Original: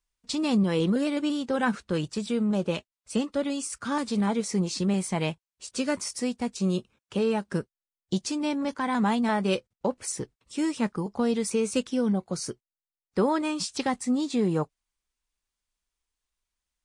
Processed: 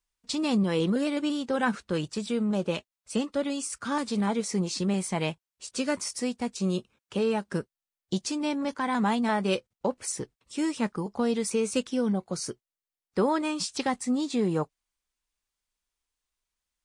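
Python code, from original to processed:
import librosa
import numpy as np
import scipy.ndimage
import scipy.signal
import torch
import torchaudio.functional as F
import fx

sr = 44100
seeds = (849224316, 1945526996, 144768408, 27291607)

y = fx.low_shelf(x, sr, hz=210.0, db=-3.5)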